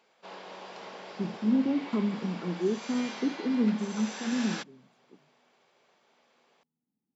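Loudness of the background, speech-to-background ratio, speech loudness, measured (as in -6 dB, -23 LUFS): -41.5 LUFS, 11.0 dB, -30.5 LUFS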